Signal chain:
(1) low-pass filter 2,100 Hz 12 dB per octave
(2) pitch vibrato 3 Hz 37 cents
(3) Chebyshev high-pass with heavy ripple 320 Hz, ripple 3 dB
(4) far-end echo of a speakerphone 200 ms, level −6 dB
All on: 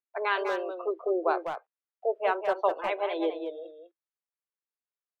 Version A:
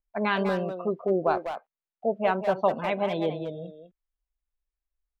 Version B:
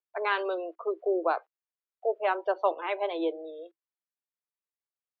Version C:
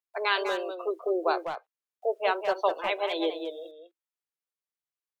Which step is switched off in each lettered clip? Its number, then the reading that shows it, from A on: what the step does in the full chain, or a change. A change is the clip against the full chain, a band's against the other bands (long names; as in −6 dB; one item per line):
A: 3, 250 Hz band +4.5 dB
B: 4, echo-to-direct ratio −7.0 dB to none audible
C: 1, 4 kHz band +8.5 dB